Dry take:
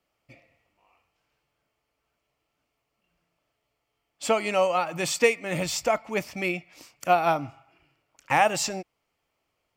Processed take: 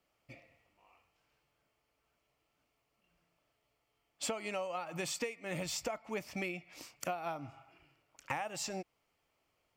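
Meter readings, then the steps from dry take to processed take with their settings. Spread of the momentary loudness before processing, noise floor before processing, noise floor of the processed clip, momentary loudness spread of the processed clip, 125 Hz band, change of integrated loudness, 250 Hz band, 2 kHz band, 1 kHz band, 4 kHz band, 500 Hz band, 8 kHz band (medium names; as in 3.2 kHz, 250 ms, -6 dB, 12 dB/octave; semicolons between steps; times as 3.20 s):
12 LU, -79 dBFS, -81 dBFS, 15 LU, -10.5 dB, -14.0 dB, -11.0 dB, -14.0 dB, -16.5 dB, -10.5 dB, -15.0 dB, -9.5 dB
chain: compression 20:1, threshold -33 dBFS, peak gain reduction 19.5 dB; trim -1.5 dB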